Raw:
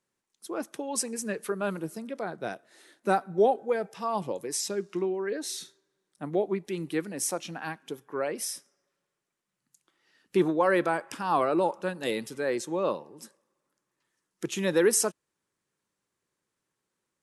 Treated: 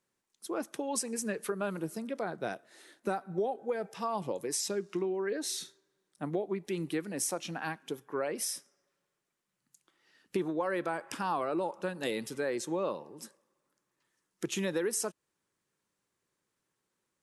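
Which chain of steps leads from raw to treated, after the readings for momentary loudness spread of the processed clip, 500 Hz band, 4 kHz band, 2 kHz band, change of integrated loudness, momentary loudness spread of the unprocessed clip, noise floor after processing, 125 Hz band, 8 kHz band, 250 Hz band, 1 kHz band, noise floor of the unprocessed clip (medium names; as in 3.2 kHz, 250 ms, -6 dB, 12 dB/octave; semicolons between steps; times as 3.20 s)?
7 LU, -6.0 dB, -2.5 dB, -5.0 dB, -5.5 dB, 14 LU, -84 dBFS, -3.5 dB, -4.0 dB, -4.5 dB, -6.5 dB, -84 dBFS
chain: compression 6:1, threshold -29 dBFS, peak gain reduction 11.5 dB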